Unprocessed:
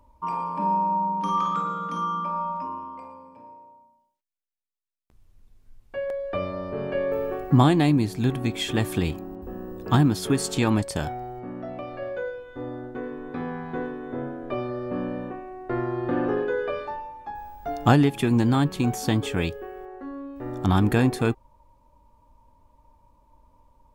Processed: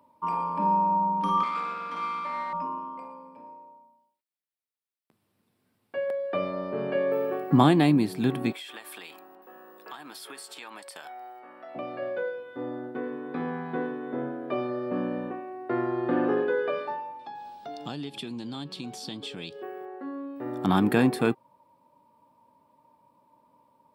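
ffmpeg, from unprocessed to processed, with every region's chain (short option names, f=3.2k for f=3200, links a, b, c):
-filter_complex "[0:a]asettb=1/sr,asplit=3[a][b][c];[a]atrim=end=1.434[d];[b]atrim=start=1.43:end=2.53,asetpts=PTS-STARTPTS,afade=t=in:d=0.004:c=qsin,afade=t=out:st=1.096:d=0.004:c=qsin,aeval=exprs='if(lt(val(0),0),0.251*val(0),val(0))':c=same,highpass=330,lowpass=7.1k,bandreject=f=2.4k:w=29[e];[c]atrim=start=2.526[f];[d][e]acrossfade=d=0.004:c1=hsin:c2=qsin[g];[g][f]acrossfade=d=0.004:c1=qsin:c2=hsin,asettb=1/sr,asplit=3[h][i][j];[h]atrim=end=8.524[k];[i]atrim=start=8.52:end=11.75,asetpts=PTS-STARTPTS,afade=t=in:d=0.004:c=qsin,afade=t=out:st=3.226:d=0.004:c=qsin,highpass=890,acompressor=threshold=-38dB:ratio=6:attack=3.2:release=140:knee=1:detection=peak[l];[j]atrim=start=11.746[m];[k][l]acrossfade=d=0.004:c1=hsin:c2=qsin[n];[n][m]acrossfade=d=0.004:c1=qsin:c2=hsin,asettb=1/sr,asplit=3[o][p][q];[o]atrim=end=17.194[r];[p]atrim=start=17.19:end=19.63,asetpts=PTS-STARTPTS,afade=t=in:d=0.004:c=qsin,afade=t=out:st=2.436:d=0.004:c=qsin,lowpass=5.9k,highshelf=f=2.7k:t=q:w=1.5:g=11,acompressor=threshold=-37dB:ratio=3:attack=3.2:release=140:knee=1:detection=peak[s];[q]atrim=start=19.626[t];[r][s]acrossfade=d=0.004:c1=hsin:c2=qsin[u];[u][t]acrossfade=d=0.004:c1=qsin:c2=hsin,highpass=f=150:w=0.5412,highpass=f=150:w=1.3066,equalizer=f=6.5k:t=o:w=0.34:g=-11.5"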